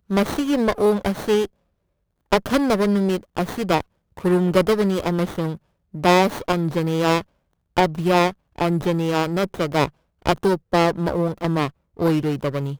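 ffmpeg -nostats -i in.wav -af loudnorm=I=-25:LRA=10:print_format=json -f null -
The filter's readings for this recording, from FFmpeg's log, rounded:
"input_i" : "-21.4",
"input_tp" : "-3.0",
"input_lra" : "1.7",
"input_thresh" : "-31.6",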